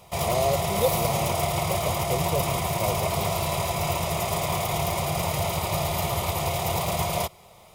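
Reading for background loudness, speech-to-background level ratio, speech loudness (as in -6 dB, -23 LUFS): -26.0 LUFS, -5.0 dB, -31.0 LUFS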